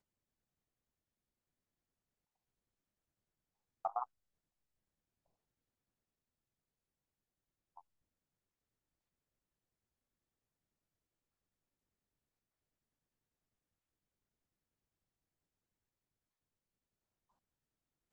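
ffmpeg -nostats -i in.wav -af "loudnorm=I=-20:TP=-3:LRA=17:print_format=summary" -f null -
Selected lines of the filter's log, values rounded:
Input Integrated:    -42.9 LUFS
Input True Peak:     -22.8 dBTP
Input LRA:             7.6 LU
Input Threshold:     -55.1 LUFS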